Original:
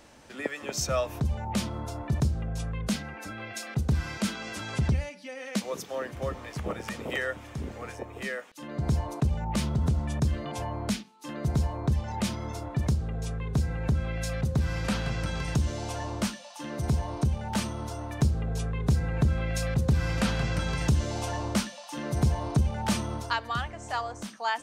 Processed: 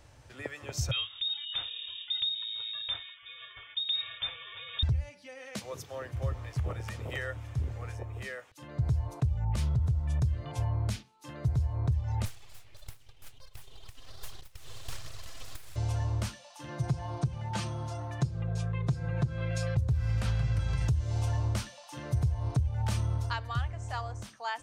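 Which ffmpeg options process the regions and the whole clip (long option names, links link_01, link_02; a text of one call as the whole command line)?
ffmpeg -i in.wav -filter_complex "[0:a]asettb=1/sr,asplit=3[link_01][link_02][link_03];[link_01]atrim=end=0.914[link_04];[link_02]atrim=start=0.91:end=4.83,asetpts=PTS-STARTPTS,afade=type=in:duration=0.004:curve=qsin,afade=type=out:start_time=3.916:duration=0.004:curve=qsin,agate=range=-33dB:threshold=-37dB:ratio=3:release=100:detection=peak,lowpass=frequency=3200:width_type=q:width=0.5098,lowpass=frequency=3200:width_type=q:width=0.6013,lowpass=frequency=3200:width_type=q:width=0.9,lowpass=frequency=3200:width_type=q:width=2.563,afreqshift=-3800[link_05];[link_03]atrim=start=4.826[link_06];[link_04][link_05]acrossfade=duration=0.004:curve1=hsin:curve2=qsin[link_07];[link_07][link_06]acrossfade=duration=0.004:curve1=qsin:curve2=hsin,asettb=1/sr,asplit=3[link_08][link_09][link_10];[link_08]atrim=end=12.254[link_11];[link_09]atrim=start=12.25:end=15.76,asetpts=PTS-STARTPTS,afade=type=in:duration=0.004:curve=qsin,afade=type=out:start_time=3.506:duration=0.004:curve=qsin,highpass=frequency=1300:width=0.5412,highpass=frequency=1300:width=1.3066,aphaser=in_gain=1:out_gain=1:delay=4.4:decay=0.54:speed=1.4:type=triangular,aeval=exprs='abs(val(0))':channel_layout=same[link_12];[link_10]atrim=start=15.756[link_13];[link_11][link_12]acrossfade=duration=0.004:curve1=hsin:curve2=qsin[link_14];[link_14][link_13]acrossfade=duration=0.004:curve1=qsin:curve2=hsin,asettb=1/sr,asplit=3[link_15][link_16][link_17];[link_15]atrim=end=16.684[link_18];[link_16]atrim=start=16.68:end=19.77,asetpts=PTS-STARTPTS,afade=type=in:duration=0.004:curve=qsin,afade=type=out:start_time=3.086:duration=0.004:curve=qsin,highpass=120,lowpass=7700,aecho=1:1:5.8:0.79,atrim=end_sample=136269[link_19];[link_17]atrim=start=19.766[link_20];[link_18][link_19]acrossfade=duration=0.004:curve1=hsin:curve2=qsin[link_21];[link_21][link_20]acrossfade=duration=0.004:curve1=qsin:curve2=hsin,lowshelf=frequency=150:width_type=q:width=3:gain=9,acompressor=threshold=-19dB:ratio=6,volume=-6dB" out.wav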